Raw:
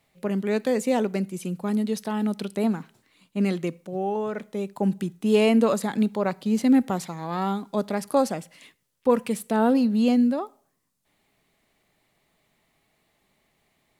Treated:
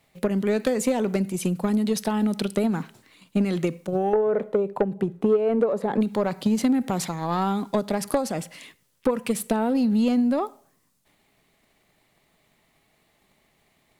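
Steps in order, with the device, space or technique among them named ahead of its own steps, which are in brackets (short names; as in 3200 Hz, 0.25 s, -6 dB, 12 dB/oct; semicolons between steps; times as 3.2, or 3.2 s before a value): 4.13–6.01 EQ curve 300 Hz 0 dB, 430 Hz +11 dB, 6100 Hz -16 dB; drum-bus smash (transient shaper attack +9 dB, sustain +5 dB; compressor 6:1, threshold -20 dBFS, peak gain reduction 19.5 dB; soft clip -15 dBFS, distortion -18 dB); gain +3 dB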